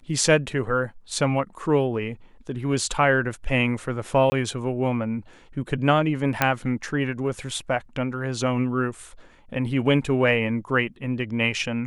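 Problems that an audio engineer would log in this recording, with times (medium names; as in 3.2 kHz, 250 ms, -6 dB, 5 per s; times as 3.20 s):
4.30–4.32 s: dropout 20 ms
6.42 s: pop -4 dBFS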